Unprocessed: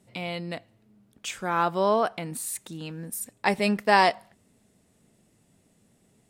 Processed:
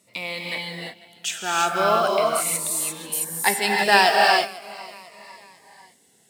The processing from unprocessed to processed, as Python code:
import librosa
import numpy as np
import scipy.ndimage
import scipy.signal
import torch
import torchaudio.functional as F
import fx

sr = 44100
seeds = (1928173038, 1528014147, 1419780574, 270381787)

y = fx.block_float(x, sr, bits=7)
y = fx.highpass(y, sr, hz=1000.0, slope=6)
y = fx.echo_feedback(y, sr, ms=497, feedback_pct=47, wet_db=-20.5)
y = fx.rev_gated(y, sr, seeds[0], gate_ms=370, shape='rising', drr_db=-1.0)
y = fx.notch_cascade(y, sr, direction='falling', hz=0.39)
y = y * 10.0 ** (8.0 / 20.0)